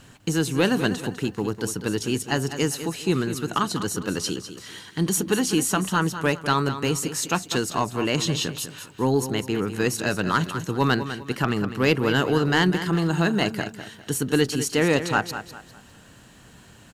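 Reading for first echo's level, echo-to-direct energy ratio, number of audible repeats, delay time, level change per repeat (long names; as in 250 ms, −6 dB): −11.0 dB, −10.5 dB, 3, 201 ms, −9.5 dB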